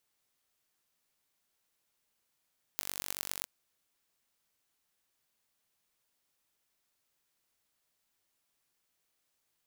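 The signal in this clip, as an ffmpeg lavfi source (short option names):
-f lavfi -i "aevalsrc='0.501*eq(mod(n,926),0)*(0.5+0.5*eq(mod(n,4630),0))':d=0.66:s=44100"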